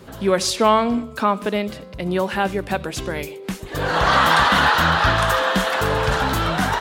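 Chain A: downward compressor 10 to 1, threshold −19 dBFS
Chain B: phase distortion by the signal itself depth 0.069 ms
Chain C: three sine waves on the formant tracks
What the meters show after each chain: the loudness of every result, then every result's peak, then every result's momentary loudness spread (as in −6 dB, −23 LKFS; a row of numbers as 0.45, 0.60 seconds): −24.0, −19.5, −19.0 LKFS; −9.5, −5.0, −2.0 dBFS; 6, 13, 12 LU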